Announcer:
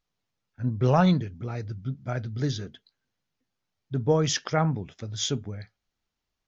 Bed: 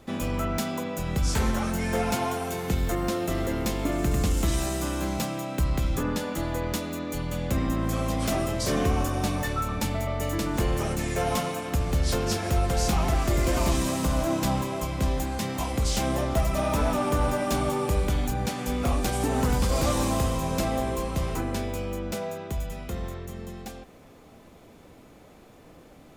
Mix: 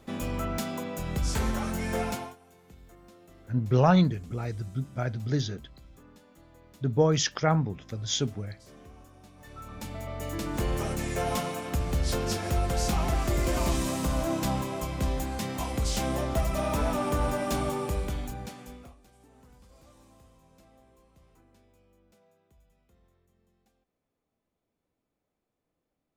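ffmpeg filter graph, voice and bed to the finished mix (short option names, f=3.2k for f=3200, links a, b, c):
-filter_complex "[0:a]adelay=2900,volume=0dB[a];[1:a]volume=20dB,afade=t=out:st=2.03:d=0.33:silence=0.0707946,afade=t=in:st=9.36:d=1.4:silence=0.0668344,afade=t=out:st=17.6:d=1.35:silence=0.0334965[b];[a][b]amix=inputs=2:normalize=0"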